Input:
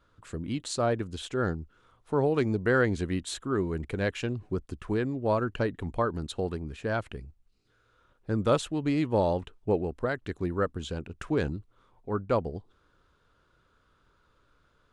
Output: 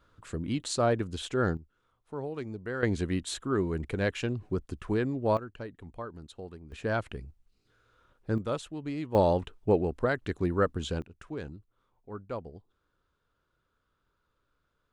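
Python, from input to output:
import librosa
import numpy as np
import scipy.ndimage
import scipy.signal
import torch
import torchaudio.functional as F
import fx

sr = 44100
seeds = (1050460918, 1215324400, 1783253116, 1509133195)

y = fx.gain(x, sr, db=fx.steps((0.0, 1.0), (1.57, -11.0), (2.83, 0.0), (5.37, -12.0), (6.72, 0.0), (8.38, -8.0), (9.15, 2.0), (11.02, -10.5)))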